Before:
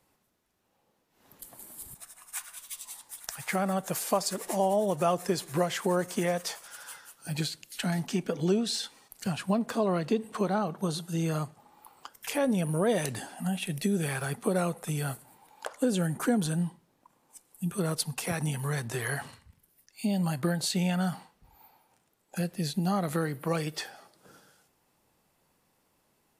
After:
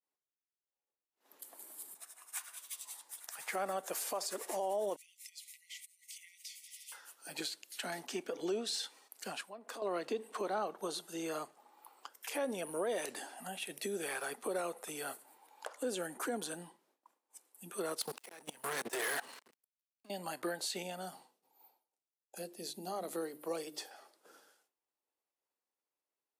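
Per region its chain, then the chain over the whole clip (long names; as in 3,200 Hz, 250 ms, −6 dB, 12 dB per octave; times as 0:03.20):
0:04.96–0:06.92: downward compressor 12 to 1, threshold −38 dBFS + linear-phase brick-wall high-pass 1,900 Hz
0:09.41–0:09.82: downward compressor, threshold −34 dBFS + low-shelf EQ 350 Hz −7.5 dB + multiband upward and downward expander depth 70%
0:18.01–0:20.10: volume swells 609 ms + leveller curve on the samples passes 5 + output level in coarse steps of 23 dB
0:20.82–0:23.91: parametric band 1,700 Hz −10.5 dB 1.8 octaves + mains-hum notches 50/100/150/200/250/300/350 Hz
whole clip: downward expander −58 dBFS; high-pass filter 310 Hz 24 dB per octave; brickwall limiter −23 dBFS; level −4.5 dB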